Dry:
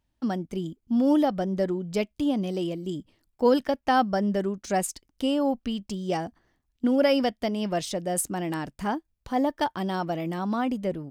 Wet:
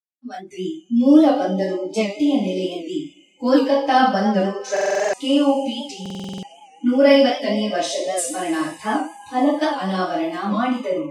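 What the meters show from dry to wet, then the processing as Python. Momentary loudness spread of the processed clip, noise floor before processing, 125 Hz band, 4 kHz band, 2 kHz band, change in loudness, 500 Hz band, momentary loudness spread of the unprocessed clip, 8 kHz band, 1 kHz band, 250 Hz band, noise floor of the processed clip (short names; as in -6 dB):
16 LU, -76 dBFS, +1.5 dB, +8.5 dB, +8.5 dB, +7.5 dB, +7.5 dB, 9 LU, +5.0 dB, +6.5 dB, +7.0 dB, -51 dBFS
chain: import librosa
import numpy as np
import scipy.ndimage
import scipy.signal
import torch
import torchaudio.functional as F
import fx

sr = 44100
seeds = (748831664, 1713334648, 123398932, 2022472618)

y = fx.fade_in_head(x, sr, length_s=0.5)
y = fx.high_shelf(y, sr, hz=5100.0, db=5.0)
y = fx.notch_comb(y, sr, f0_hz=460.0)
y = fx.rev_double_slope(y, sr, seeds[0], early_s=0.5, late_s=4.2, knee_db=-19, drr_db=-9.5)
y = fx.noise_reduce_blind(y, sr, reduce_db=26)
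y = fx.bandpass_edges(y, sr, low_hz=240.0, high_hz=6800.0)
y = fx.buffer_glitch(y, sr, at_s=(4.72, 6.01), block=2048, repeats=8)
y = fx.record_warp(y, sr, rpm=78.0, depth_cents=100.0)
y = y * librosa.db_to_amplitude(-1.0)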